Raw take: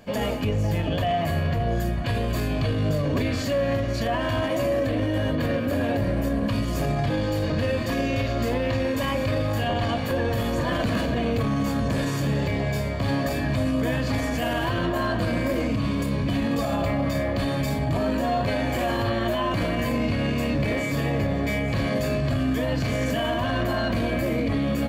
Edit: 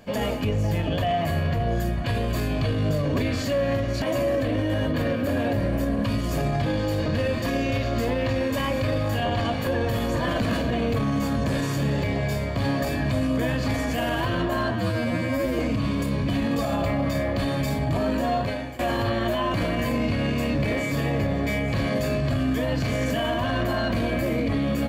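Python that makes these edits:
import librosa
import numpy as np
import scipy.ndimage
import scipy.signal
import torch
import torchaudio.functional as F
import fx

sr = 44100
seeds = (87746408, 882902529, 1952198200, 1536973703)

y = fx.edit(x, sr, fx.cut(start_s=4.02, length_s=0.44),
    fx.stretch_span(start_s=15.15, length_s=0.44, factor=2.0),
    fx.fade_out_to(start_s=18.35, length_s=0.44, floor_db=-17.5), tone=tone)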